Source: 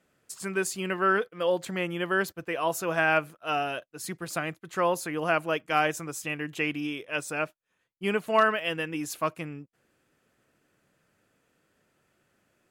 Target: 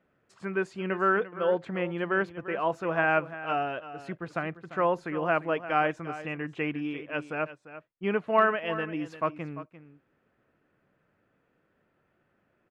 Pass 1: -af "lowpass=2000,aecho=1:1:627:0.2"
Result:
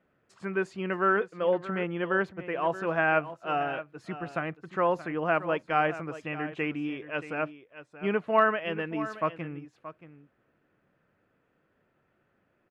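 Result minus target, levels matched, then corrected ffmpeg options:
echo 281 ms late
-af "lowpass=2000,aecho=1:1:346:0.2"

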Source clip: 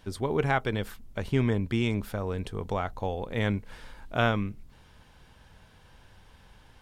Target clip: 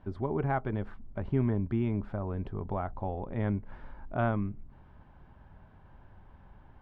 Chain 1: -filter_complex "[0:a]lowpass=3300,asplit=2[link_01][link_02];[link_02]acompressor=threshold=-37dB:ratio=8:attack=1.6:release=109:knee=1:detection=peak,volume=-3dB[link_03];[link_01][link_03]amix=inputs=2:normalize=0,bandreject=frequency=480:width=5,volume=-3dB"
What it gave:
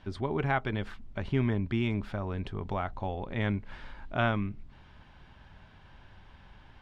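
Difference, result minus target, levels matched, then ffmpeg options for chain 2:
4,000 Hz band +15.5 dB
-filter_complex "[0:a]lowpass=1100,asplit=2[link_01][link_02];[link_02]acompressor=threshold=-37dB:ratio=8:attack=1.6:release=109:knee=1:detection=peak,volume=-3dB[link_03];[link_01][link_03]amix=inputs=2:normalize=0,bandreject=frequency=480:width=5,volume=-3dB"

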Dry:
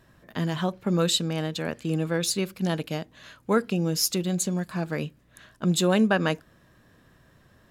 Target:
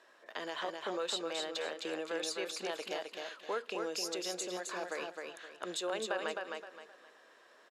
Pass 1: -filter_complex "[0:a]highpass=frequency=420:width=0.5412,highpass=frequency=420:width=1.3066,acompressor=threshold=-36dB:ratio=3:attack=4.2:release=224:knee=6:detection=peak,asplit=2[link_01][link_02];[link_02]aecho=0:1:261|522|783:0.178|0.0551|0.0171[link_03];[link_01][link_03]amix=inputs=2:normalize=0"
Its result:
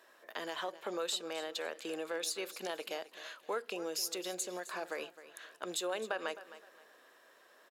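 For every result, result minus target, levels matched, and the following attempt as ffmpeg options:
echo-to-direct −11 dB; 8,000 Hz band +2.5 dB
-filter_complex "[0:a]highpass=frequency=420:width=0.5412,highpass=frequency=420:width=1.3066,acompressor=threshold=-36dB:ratio=3:attack=4.2:release=224:knee=6:detection=peak,asplit=2[link_01][link_02];[link_02]aecho=0:1:261|522|783|1044:0.631|0.196|0.0606|0.0188[link_03];[link_01][link_03]amix=inputs=2:normalize=0"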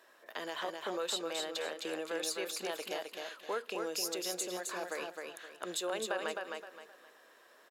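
8,000 Hz band +2.5 dB
-filter_complex "[0:a]highpass=frequency=420:width=0.5412,highpass=frequency=420:width=1.3066,acompressor=threshold=-36dB:ratio=3:attack=4.2:release=224:knee=6:detection=peak,lowpass=7400,asplit=2[link_01][link_02];[link_02]aecho=0:1:261|522|783|1044:0.631|0.196|0.0606|0.0188[link_03];[link_01][link_03]amix=inputs=2:normalize=0"

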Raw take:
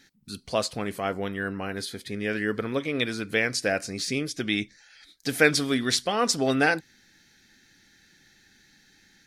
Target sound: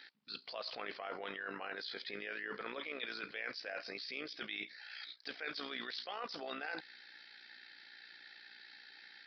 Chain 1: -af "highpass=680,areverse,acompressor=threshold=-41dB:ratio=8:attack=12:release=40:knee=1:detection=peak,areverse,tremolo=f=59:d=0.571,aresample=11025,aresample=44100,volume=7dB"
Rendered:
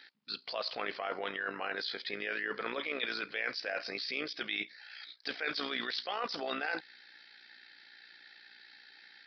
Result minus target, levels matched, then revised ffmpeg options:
downward compressor: peak gain reduction −7 dB
-af "highpass=680,areverse,acompressor=threshold=-49dB:ratio=8:attack=12:release=40:knee=1:detection=peak,areverse,tremolo=f=59:d=0.571,aresample=11025,aresample=44100,volume=7dB"

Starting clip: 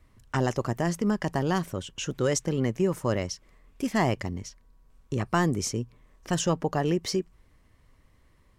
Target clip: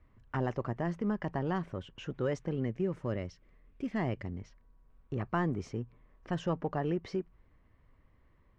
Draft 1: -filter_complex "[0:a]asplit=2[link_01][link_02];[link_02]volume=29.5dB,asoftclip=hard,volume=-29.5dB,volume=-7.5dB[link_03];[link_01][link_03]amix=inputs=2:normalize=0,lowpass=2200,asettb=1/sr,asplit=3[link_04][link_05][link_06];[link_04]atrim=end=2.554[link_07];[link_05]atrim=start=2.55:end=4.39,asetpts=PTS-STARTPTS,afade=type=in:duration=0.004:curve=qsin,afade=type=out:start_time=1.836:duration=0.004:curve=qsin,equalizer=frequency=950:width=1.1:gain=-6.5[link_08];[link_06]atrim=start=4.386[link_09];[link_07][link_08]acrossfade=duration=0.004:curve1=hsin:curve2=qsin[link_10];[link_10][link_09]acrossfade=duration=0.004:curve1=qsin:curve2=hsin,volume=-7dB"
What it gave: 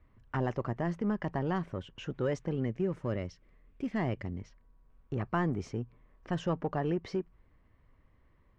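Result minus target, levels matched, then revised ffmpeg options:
gain into a clipping stage and back: distortion −4 dB
-filter_complex "[0:a]asplit=2[link_01][link_02];[link_02]volume=39.5dB,asoftclip=hard,volume=-39.5dB,volume=-7.5dB[link_03];[link_01][link_03]amix=inputs=2:normalize=0,lowpass=2200,asettb=1/sr,asplit=3[link_04][link_05][link_06];[link_04]atrim=end=2.554[link_07];[link_05]atrim=start=2.55:end=4.39,asetpts=PTS-STARTPTS,afade=type=in:duration=0.004:curve=qsin,afade=type=out:start_time=1.836:duration=0.004:curve=qsin,equalizer=frequency=950:width=1.1:gain=-6.5[link_08];[link_06]atrim=start=4.386[link_09];[link_07][link_08]acrossfade=duration=0.004:curve1=hsin:curve2=qsin[link_10];[link_10][link_09]acrossfade=duration=0.004:curve1=qsin:curve2=hsin,volume=-7dB"

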